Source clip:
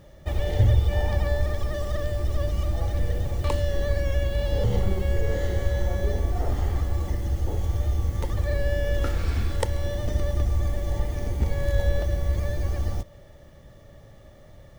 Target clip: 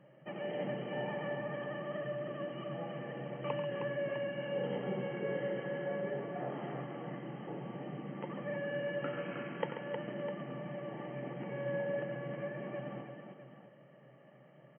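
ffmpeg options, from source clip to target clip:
-filter_complex "[0:a]acrossover=split=190|870|1900[a][b][c][d];[a]asoftclip=type=hard:threshold=-26dB[e];[e][b][c][d]amix=inputs=4:normalize=0,aecho=1:1:90|136|313|654:0.282|0.316|0.501|0.282,flanger=delay=1.1:depth=4.9:regen=-80:speed=1.4:shape=sinusoidal,afftfilt=real='re*between(b*sr/4096,120,3200)':imag='im*between(b*sr/4096,120,3200)':win_size=4096:overlap=0.75,volume=-3.5dB"

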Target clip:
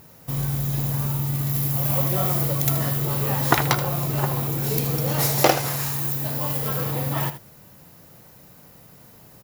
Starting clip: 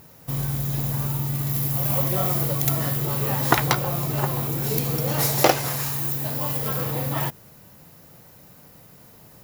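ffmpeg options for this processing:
-af "aecho=1:1:78:0.251"

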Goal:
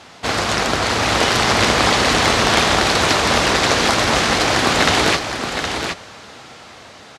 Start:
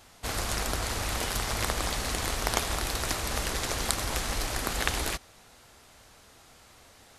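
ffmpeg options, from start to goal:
-filter_complex "[0:a]dynaudnorm=f=230:g=11:m=8.5dB,aeval=exprs='0.891*sin(PI/2*5.01*val(0)/0.891)':c=same,highpass=130,lowpass=5k,asplit=2[a][b];[b]aecho=0:1:766:0.447[c];[a][c]amix=inputs=2:normalize=0,volume=-3dB"

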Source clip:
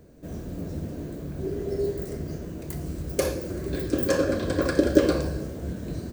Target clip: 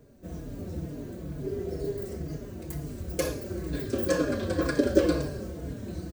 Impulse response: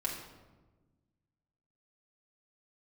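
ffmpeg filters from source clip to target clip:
-filter_complex "[0:a]asplit=2[a][b];[b]adelay=4.4,afreqshift=-2.1[c];[a][c]amix=inputs=2:normalize=1"

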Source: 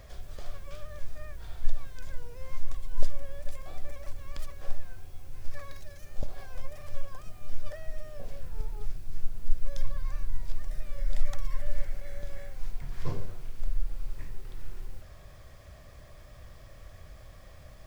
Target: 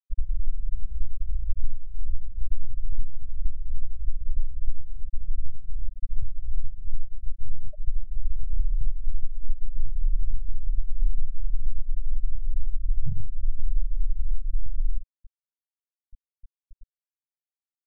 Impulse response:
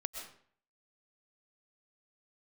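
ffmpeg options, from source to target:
-af "afftfilt=real='re*gte(hypot(re,im),0.126)':imag='im*gte(hypot(re,im),0.126)':win_size=1024:overlap=0.75,lowshelf=f=410:g=12,acompressor=threshold=-19dB:ratio=12,volume=5.5dB"

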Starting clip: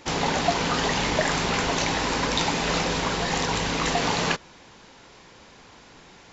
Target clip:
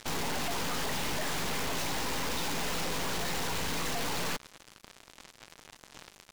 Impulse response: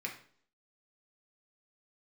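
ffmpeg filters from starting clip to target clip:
-af "aeval=exprs='(tanh(89.1*val(0)+0.65)-tanh(0.65))/89.1':c=same,acrusher=bits=6:mix=0:aa=0.5,volume=8dB"

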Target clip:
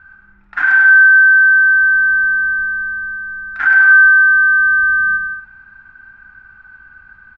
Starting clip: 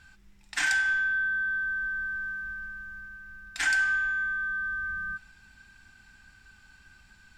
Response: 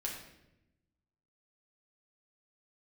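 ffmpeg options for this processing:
-filter_complex "[0:a]lowpass=f=1.4k:t=q:w=5.9,asplit=2[a][b];[b]aecho=0:1:100|170|219|253.3|277.3:0.631|0.398|0.251|0.158|0.1[c];[a][c]amix=inputs=2:normalize=0,volume=3.5dB"

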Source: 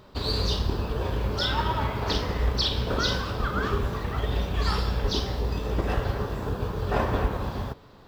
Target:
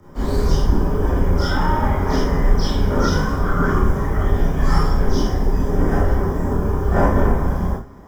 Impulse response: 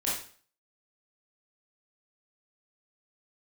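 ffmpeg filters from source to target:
-filter_complex "[0:a]afreqshift=-29,acrossover=split=310|2400[a][b][c];[a]acontrast=47[d];[c]asuperstop=centerf=3700:order=8:qfactor=1.5[e];[d][b][e]amix=inputs=3:normalize=0[f];[1:a]atrim=start_sample=2205,afade=t=out:st=0.17:d=0.01,atrim=end_sample=7938[g];[f][g]afir=irnorm=-1:irlink=0"

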